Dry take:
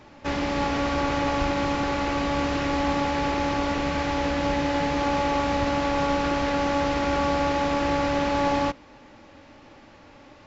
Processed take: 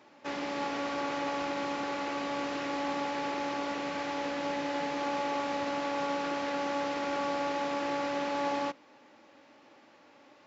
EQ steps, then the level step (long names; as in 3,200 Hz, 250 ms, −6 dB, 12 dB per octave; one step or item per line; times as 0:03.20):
high-pass filter 260 Hz 12 dB per octave
−7.5 dB